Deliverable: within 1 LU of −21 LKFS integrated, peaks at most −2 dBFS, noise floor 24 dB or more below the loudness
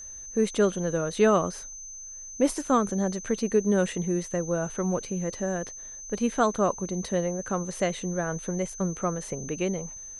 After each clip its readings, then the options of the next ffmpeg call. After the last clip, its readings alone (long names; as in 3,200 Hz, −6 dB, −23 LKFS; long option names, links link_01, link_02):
interfering tone 6,200 Hz; level of the tone −39 dBFS; integrated loudness −27.5 LKFS; sample peak −10.0 dBFS; target loudness −21.0 LKFS
→ -af "bandreject=frequency=6200:width=30"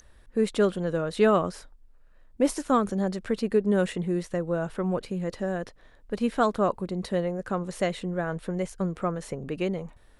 interfering tone none found; integrated loudness −28.0 LKFS; sample peak −10.0 dBFS; target loudness −21.0 LKFS
→ -af "volume=7dB"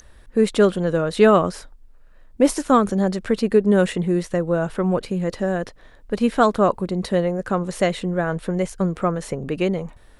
integrated loudness −21.0 LKFS; sample peak −3.0 dBFS; background noise floor −48 dBFS